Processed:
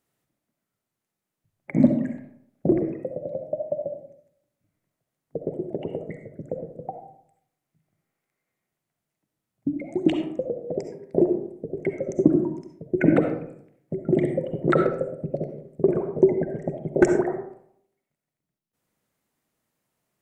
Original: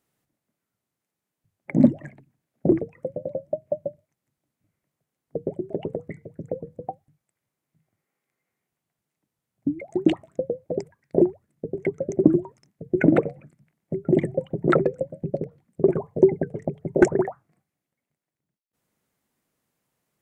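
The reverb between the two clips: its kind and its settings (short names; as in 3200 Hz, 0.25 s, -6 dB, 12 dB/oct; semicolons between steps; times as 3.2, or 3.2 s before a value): digital reverb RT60 0.69 s, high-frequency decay 0.5×, pre-delay 25 ms, DRR 5 dB; gain -1.5 dB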